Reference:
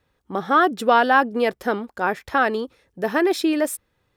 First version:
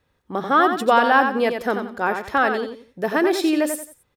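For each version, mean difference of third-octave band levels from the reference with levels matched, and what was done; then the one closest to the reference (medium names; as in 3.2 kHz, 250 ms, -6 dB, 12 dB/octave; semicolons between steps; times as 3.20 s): 4.5 dB: feedback delay 89 ms, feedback 28%, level -7 dB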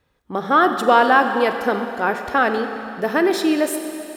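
6.0 dB: Schroeder reverb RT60 3.1 s, combs from 32 ms, DRR 6.5 dB; trim +1.5 dB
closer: first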